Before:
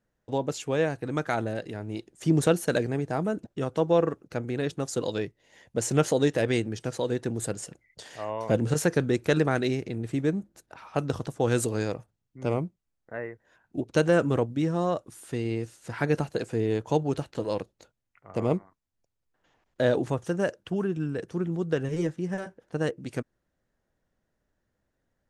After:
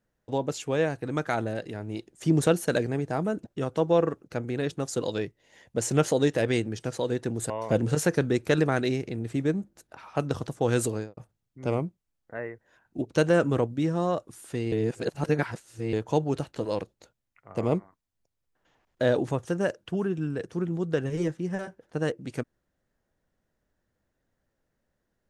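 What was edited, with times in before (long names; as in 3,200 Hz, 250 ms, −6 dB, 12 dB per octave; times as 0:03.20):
0:07.50–0:08.29: remove
0:11.67–0:11.96: fade out and dull
0:15.51–0:16.72: reverse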